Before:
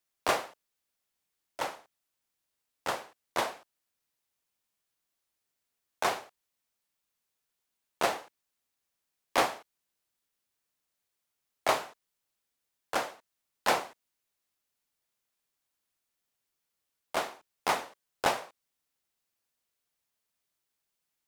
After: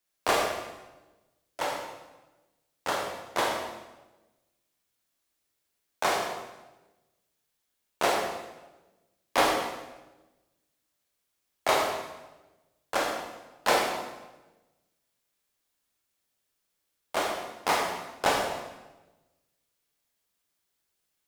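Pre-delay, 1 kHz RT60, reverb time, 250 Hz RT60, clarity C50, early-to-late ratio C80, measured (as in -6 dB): 19 ms, 1.0 s, 1.1 s, 1.3 s, 2.5 dB, 4.5 dB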